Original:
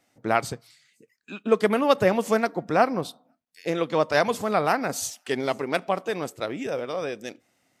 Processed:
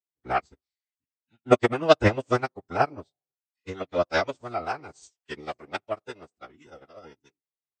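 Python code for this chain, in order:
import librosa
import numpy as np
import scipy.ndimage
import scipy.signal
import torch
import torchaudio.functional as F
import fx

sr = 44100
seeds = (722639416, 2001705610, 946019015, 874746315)

y = fx.pitch_keep_formants(x, sr, semitones=-10.0)
y = fx.upward_expand(y, sr, threshold_db=-43.0, expansion=2.5)
y = y * 10.0 ** (5.0 / 20.0)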